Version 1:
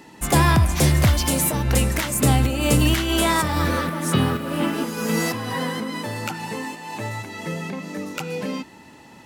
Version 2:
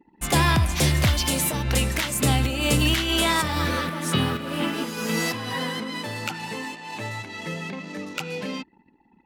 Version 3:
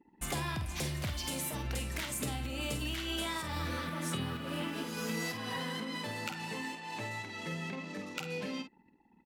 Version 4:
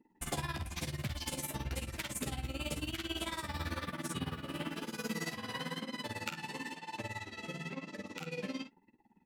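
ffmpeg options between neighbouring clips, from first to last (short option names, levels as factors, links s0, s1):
-af "anlmdn=0.631,equalizer=f=3300:w=0.76:g=6.5,volume=0.631"
-filter_complex "[0:a]acompressor=threshold=0.0447:ratio=6,asplit=2[s0][s1];[s1]adelay=49,volume=0.398[s2];[s0][s2]amix=inputs=2:normalize=0,volume=0.447"
-af "tremolo=f=18:d=0.96,flanger=delay=8.6:depth=6.4:regen=-29:speed=1:shape=sinusoidal,volume=1.78"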